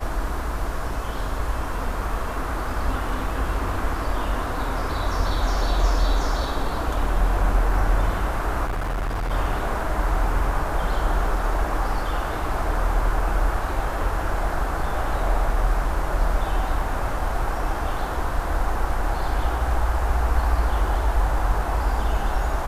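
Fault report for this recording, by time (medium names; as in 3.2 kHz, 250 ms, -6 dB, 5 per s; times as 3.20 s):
8.64–9.32 s: clipped -22.5 dBFS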